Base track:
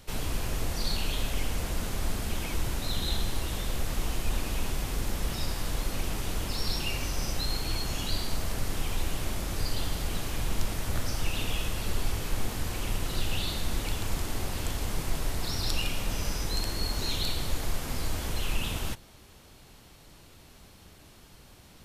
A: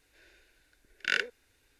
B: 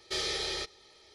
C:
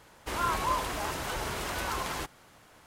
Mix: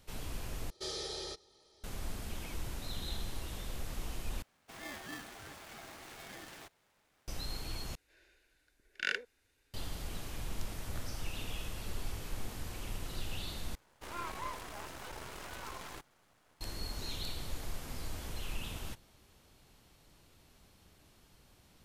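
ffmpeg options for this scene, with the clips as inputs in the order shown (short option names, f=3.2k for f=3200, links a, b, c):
-filter_complex "[3:a]asplit=2[a][b];[0:a]volume=-10dB[c];[2:a]equalizer=f=2.2k:t=o:w=1.1:g=-12.5[d];[a]aeval=exprs='val(0)*sgn(sin(2*PI*730*n/s))':c=same[e];[b]aeval=exprs='if(lt(val(0),0),0.251*val(0),val(0))':c=same[f];[c]asplit=5[g][h][i][j][k];[g]atrim=end=0.704[l];[d]atrim=end=1.14,asetpts=PTS-STARTPTS,volume=-4.5dB[m];[h]atrim=start=1.836:end=4.424[n];[e]atrim=end=2.86,asetpts=PTS-STARTPTS,volume=-16.5dB[o];[i]atrim=start=7.276:end=7.954[p];[1:a]atrim=end=1.79,asetpts=PTS-STARTPTS,volume=-6dB[q];[j]atrim=start=9.736:end=13.754[r];[f]atrim=end=2.86,asetpts=PTS-STARTPTS,volume=-9dB[s];[k]atrim=start=16.606[t];[l][m]acrossfade=d=0.004:c1=hsin:c2=hsin[u];[u][n]acrossfade=d=0.004:c1=hsin:c2=hsin[v];[v][o]acrossfade=d=0.004:c1=hsin:c2=hsin[w];[w][p]acrossfade=d=0.004:c1=hsin:c2=hsin[x];[x][q]acrossfade=d=0.004:c1=hsin:c2=hsin[y];[y][r]acrossfade=d=0.004:c1=hsin:c2=hsin[z];[z][s]acrossfade=d=0.004:c1=hsin:c2=hsin[aa];[aa][t]acrossfade=d=0.004:c1=hsin:c2=hsin"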